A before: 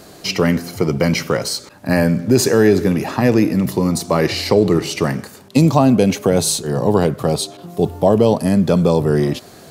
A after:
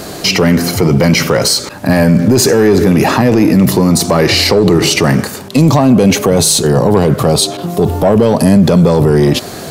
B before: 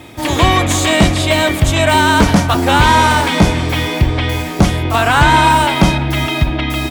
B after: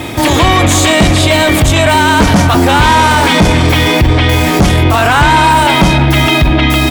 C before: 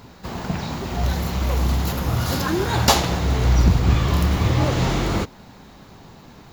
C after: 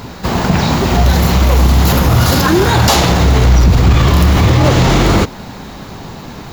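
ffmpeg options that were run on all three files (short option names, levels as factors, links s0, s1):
-af "acontrast=46,alimiter=level_in=3.35:limit=0.891:release=50:level=0:latency=1,volume=0.891"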